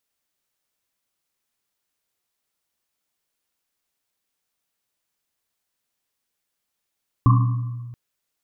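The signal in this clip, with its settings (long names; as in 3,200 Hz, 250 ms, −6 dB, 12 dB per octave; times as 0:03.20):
drum after Risset length 0.68 s, pitch 120 Hz, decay 1.77 s, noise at 1,100 Hz, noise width 150 Hz, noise 15%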